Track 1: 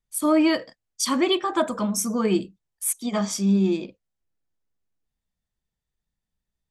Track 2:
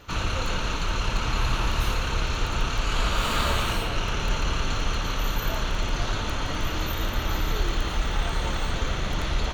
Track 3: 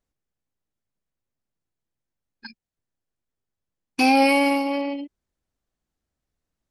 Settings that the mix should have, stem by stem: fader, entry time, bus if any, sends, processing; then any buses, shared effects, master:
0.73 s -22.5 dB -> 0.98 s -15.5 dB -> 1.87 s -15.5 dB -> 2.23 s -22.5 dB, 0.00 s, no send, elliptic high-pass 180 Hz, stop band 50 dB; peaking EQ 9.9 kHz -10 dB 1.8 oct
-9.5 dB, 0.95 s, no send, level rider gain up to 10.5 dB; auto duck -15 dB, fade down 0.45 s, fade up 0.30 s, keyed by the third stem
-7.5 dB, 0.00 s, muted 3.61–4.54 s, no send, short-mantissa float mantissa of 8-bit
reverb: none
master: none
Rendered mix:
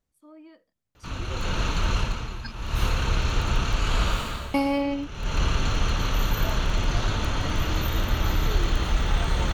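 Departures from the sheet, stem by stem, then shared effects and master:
stem 1 -22.5 dB -> -30.5 dB; stem 3 -7.5 dB -> -0.5 dB; master: extra peaking EQ 88 Hz +5 dB 2.8 oct

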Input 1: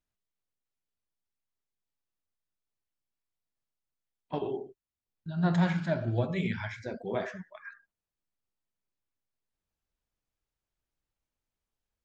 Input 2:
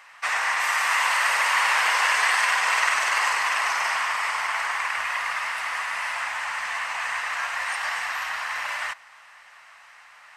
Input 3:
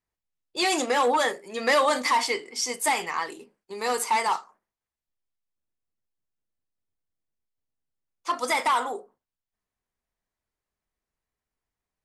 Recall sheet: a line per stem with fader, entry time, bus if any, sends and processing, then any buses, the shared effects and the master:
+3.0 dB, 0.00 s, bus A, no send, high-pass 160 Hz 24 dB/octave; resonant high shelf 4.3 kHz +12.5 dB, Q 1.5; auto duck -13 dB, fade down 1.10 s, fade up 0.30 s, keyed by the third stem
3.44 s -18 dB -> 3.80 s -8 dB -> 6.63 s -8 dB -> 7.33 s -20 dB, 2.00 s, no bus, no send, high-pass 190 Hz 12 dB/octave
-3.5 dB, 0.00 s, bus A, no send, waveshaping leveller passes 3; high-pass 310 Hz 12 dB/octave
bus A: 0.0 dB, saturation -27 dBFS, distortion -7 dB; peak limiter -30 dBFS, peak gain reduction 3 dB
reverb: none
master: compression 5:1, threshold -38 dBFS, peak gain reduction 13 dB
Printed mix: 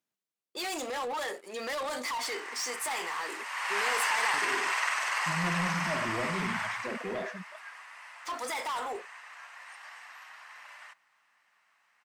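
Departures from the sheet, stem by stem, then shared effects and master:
stem 1: missing resonant high shelf 4.3 kHz +12.5 dB, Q 1.5; stem 3 -3.5 dB -> -12.0 dB; master: missing compression 5:1, threshold -38 dBFS, peak gain reduction 13 dB

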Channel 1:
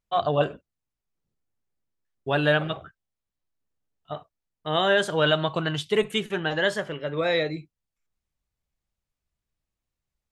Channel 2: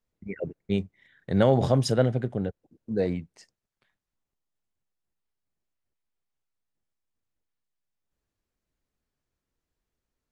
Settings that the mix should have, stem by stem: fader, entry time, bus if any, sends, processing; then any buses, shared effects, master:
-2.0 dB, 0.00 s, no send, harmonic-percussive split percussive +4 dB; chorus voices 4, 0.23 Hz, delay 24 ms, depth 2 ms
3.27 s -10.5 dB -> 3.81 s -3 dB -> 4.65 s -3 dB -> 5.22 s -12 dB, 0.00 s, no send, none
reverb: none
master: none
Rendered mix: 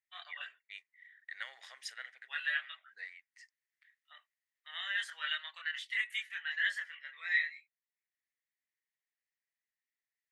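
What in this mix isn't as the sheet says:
stem 2 -10.5 dB -> -0.5 dB; master: extra ladder high-pass 1.8 kHz, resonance 80%

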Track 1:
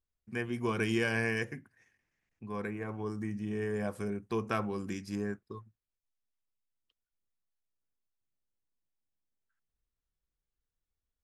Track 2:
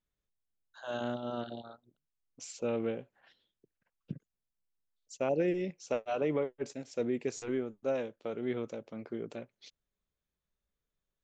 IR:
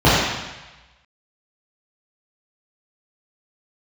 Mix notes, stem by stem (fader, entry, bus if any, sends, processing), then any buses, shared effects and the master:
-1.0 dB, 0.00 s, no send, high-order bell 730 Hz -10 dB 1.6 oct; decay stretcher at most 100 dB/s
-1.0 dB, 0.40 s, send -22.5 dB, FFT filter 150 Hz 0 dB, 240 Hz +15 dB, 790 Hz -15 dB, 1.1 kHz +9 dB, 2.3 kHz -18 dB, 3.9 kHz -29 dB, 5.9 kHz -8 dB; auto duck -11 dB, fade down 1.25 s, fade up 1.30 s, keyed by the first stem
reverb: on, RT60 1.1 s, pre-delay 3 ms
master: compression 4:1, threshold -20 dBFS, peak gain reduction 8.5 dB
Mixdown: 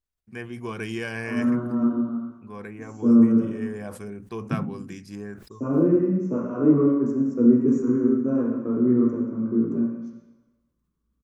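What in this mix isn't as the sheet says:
stem 1: missing high-order bell 730 Hz -10 dB 1.6 oct; master: missing compression 4:1, threshold -20 dBFS, peak gain reduction 8.5 dB

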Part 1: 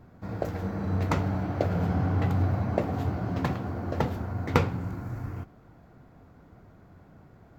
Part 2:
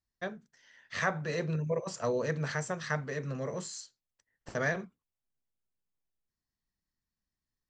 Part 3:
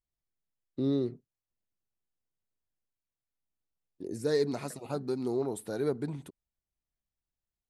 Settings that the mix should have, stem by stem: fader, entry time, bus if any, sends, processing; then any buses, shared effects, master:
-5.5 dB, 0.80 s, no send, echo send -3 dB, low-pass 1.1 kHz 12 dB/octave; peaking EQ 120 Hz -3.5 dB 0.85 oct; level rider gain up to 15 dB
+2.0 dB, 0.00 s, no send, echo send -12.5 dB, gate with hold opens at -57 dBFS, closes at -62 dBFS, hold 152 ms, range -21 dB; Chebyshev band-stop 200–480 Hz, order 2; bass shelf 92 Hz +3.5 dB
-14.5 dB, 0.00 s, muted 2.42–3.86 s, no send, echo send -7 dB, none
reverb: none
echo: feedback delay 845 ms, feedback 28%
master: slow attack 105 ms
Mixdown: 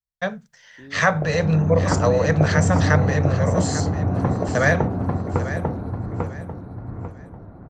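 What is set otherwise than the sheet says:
stem 1: missing peaking EQ 120 Hz -3.5 dB 0.85 oct; stem 2 +2.0 dB -> +13.0 dB; master: missing slow attack 105 ms

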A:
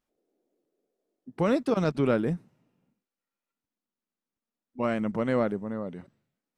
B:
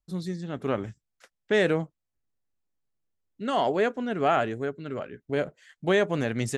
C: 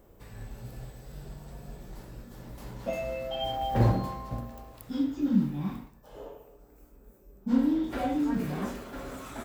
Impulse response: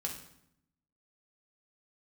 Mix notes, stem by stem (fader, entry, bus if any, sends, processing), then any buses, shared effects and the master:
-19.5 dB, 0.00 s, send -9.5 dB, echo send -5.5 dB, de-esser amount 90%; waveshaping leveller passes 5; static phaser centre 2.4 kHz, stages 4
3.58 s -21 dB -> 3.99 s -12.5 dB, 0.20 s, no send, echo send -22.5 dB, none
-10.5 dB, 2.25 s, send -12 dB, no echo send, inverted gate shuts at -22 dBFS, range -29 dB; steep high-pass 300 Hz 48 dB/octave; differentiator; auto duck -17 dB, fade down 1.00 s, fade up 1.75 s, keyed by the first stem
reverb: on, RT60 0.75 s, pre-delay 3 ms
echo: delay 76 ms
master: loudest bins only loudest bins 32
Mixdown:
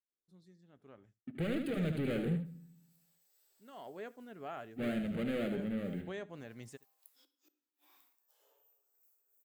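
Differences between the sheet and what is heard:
stem B -21.0 dB -> -29.5 dB; master: missing loudest bins only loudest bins 32

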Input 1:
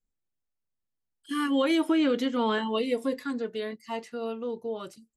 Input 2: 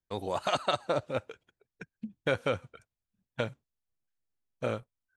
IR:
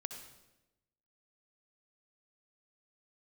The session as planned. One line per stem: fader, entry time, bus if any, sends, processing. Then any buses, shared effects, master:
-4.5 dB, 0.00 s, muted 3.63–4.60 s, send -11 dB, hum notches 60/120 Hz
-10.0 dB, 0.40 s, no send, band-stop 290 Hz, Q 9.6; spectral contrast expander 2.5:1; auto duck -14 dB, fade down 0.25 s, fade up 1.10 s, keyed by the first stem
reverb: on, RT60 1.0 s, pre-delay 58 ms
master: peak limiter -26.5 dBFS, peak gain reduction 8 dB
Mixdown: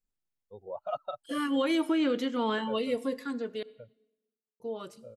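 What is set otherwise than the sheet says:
stem 2 -10.0 dB -> -3.5 dB; master: missing peak limiter -26.5 dBFS, peak gain reduction 8 dB

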